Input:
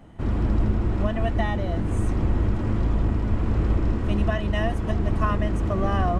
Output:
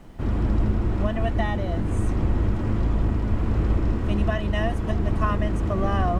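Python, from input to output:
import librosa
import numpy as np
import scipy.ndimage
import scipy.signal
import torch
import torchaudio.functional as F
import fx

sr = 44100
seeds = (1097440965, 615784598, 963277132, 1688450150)

y = fx.dmg_noise_colour(x, sr, seeds[0], colour='brown', level_db=-44.0)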